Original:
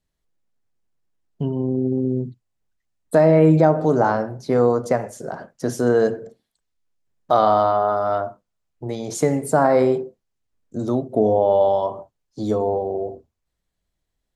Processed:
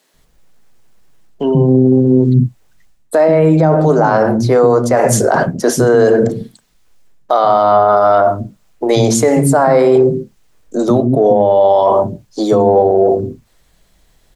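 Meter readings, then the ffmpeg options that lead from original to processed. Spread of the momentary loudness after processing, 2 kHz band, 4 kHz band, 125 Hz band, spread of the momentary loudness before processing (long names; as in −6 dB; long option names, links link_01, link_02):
9 LU, +9.5 dB, +12.5 dB, +9.5 dB, 16 LU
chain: -filter_complex "[0:a]areverse,acompressor=threshold=-29dB:ratio=10,areverse,equalizer=frequency=81:width_type=o:width=0.37:gain=-14.5,acrossover=split=270[link_01][link_02];[link_01]adelay=140[link_03];[link_03][link_02]amix=inputs=2:normalize=0,alimiter=level_in=26.5dB:limit=-1dB:release=50:level=0:latency=1,volume=-1dB"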